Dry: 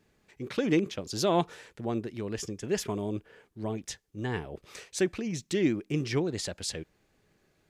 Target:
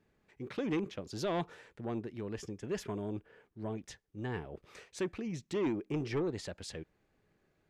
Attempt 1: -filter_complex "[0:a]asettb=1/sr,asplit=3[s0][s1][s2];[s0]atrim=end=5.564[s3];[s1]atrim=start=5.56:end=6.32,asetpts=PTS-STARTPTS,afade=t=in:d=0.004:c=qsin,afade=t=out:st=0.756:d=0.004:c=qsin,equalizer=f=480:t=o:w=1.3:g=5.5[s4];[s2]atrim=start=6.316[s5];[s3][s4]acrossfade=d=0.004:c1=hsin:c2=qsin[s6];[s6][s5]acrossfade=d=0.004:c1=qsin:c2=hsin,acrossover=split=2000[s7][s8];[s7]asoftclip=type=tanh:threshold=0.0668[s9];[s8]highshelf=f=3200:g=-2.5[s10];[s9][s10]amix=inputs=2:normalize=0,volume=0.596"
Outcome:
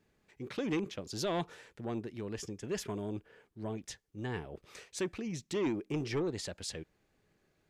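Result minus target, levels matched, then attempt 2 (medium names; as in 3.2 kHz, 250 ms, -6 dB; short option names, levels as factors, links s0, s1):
8 kHz band +6.0 dB
-filter_complex "[0:a]asettb=1/sr,asplit=3[s0][s1][s2];[s0]atrim=end=5.564[s3];[s1]atrim=start=5.56:end=6.32,asetpts=PTS-STARTPTS,afade=t=in:d=0.004:c=qsin,afade=t=out:st=0.756:d=0.004:c=qsin,equalizer=f=480:t=o:w=1.3:g=5.5[s4];[s2]atrim=start=6.316[s5];[s3][s4]acrossfade=d=0.004:c1=hsin:c2=qsin[s6];[s6][s5]acrossfade=d=0.004:c1=qsin:c2=hsin,acrossover=split=2000[s7][s8];[s7]asoftclip=type=tanh:threshold=0.0668[s9];[s8]highshelf=f=3200:g=-10[s10];[s9][s10]amix=inputs=2:normalize=0,volume=0.596"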